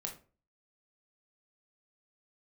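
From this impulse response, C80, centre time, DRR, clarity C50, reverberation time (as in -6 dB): 15.5 dB, 17 ms, 1.5 dB, 9.5 dB, 0.35 s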